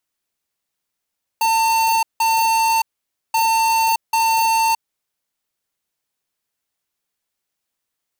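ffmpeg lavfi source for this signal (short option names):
-f lavfi -i "aevalsrc='0.15*(2*lt(mod(901*t,1),0.5)-1)*clip(min(mod(mod(t,1.93),0.79),0.62-mod(mod(t,1.93),0.79))/0.005,0,1)*lt(mod(t,1.93),1.58)':d=3.86:s=44100"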